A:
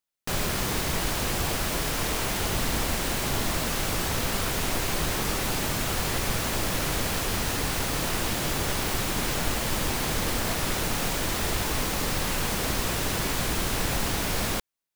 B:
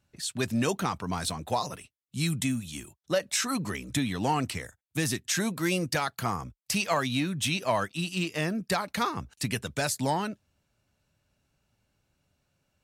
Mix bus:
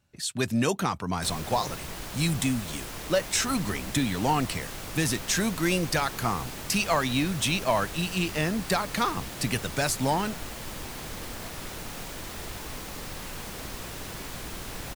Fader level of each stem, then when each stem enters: -10.5 dB, +2.0 dB; 0.95 s, 0.00 s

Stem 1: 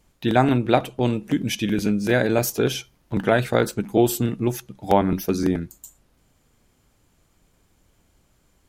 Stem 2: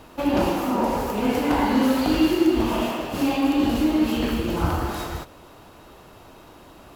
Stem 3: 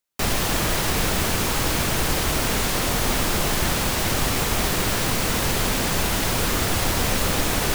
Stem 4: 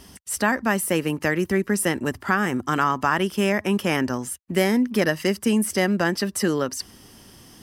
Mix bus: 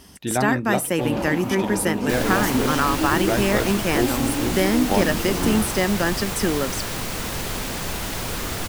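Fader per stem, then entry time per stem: -5.5 dB, -6.0 dB, -5.5 dB, -0.5 dB; 0.00 s, 0.80 s, 1.90 s, 0.00 s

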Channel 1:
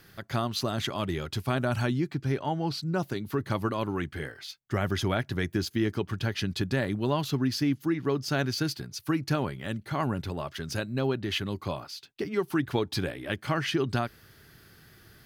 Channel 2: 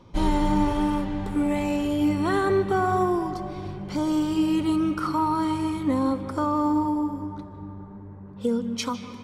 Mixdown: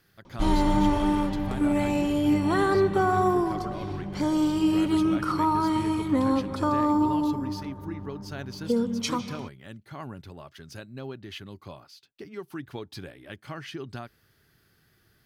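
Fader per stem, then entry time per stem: -10.0 dB, 0.0 dB; 0.00 s, 0.25 s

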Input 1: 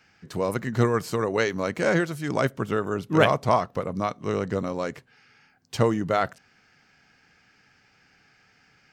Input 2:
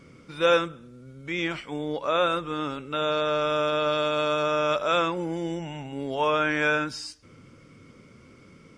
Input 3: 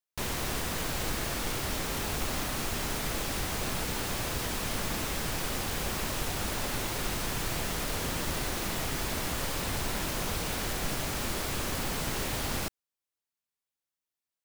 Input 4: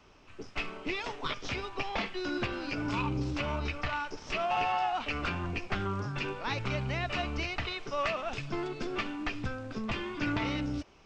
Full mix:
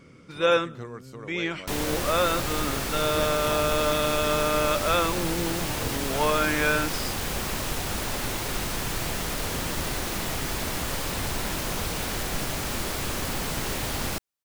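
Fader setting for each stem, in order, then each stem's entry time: -16.5 dB, -0.5 dB, +3.0 dB, mute; 0.00 s, 0.00 s, 1.50 s, mute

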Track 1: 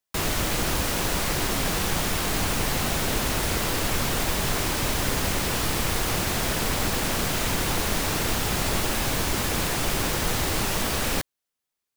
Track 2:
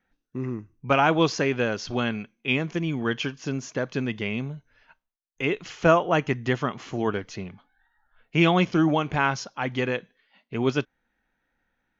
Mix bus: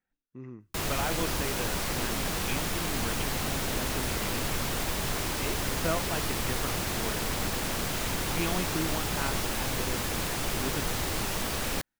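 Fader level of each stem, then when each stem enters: -5.5 dB, -13.0 dB; 0.60 s, 0.00 s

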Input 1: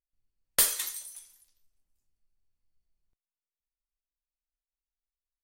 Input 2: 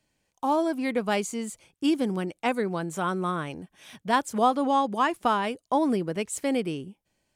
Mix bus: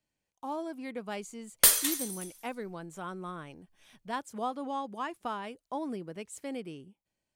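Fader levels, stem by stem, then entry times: +3.0 dB, -12.0 dB; 1.05 s, 0.00 s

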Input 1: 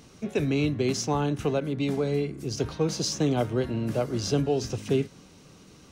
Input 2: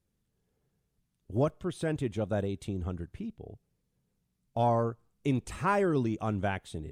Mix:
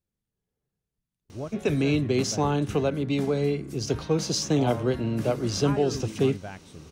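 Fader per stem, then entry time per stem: +1.5 dB, -8.0 dB; 1.30 s, 0.00 s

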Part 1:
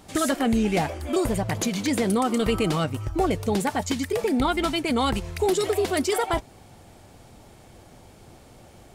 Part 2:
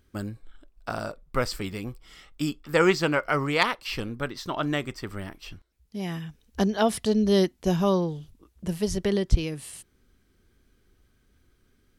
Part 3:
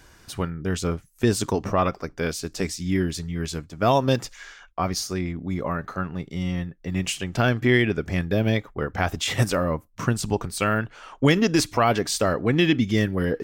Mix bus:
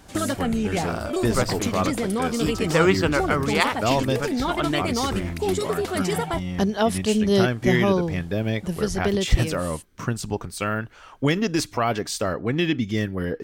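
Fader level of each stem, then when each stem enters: -2.5 dB, +1.5 dB, -3.0 dB; 0.00 s, 0.00 s, 0.00 s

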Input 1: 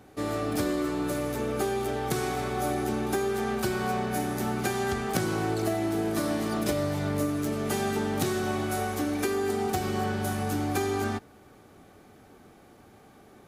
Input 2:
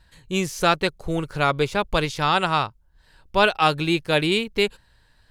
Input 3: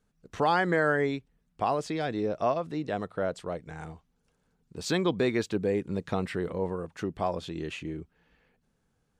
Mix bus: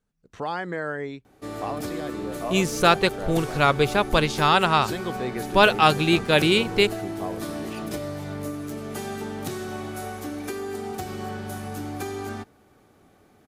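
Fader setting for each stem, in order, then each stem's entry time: -4.0 dB, +1.5 dB, -5.0 dB; 1.25 s, 2.20 s, 0.00 s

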